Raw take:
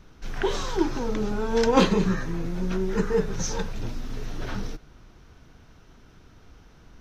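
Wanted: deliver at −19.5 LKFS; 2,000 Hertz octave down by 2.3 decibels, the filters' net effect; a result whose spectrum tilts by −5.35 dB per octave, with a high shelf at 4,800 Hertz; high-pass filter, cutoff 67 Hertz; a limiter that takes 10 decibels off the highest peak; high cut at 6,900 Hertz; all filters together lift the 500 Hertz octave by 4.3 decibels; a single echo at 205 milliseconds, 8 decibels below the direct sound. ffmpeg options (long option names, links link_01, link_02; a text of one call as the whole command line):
ffmpeg -i in.wav -af "highpass=67,lowpass=6900,equalizer=frequency=500:width_type=o:gain=5,equalizer=frequency=2000:width_type=o:gain=-4.5,highshelf=frequency=4800:gain=6.5,alimiter=limit=-14.5dB:level=0:latency=1,aecho=1:1:205:0.398,volume=7dB" out.wav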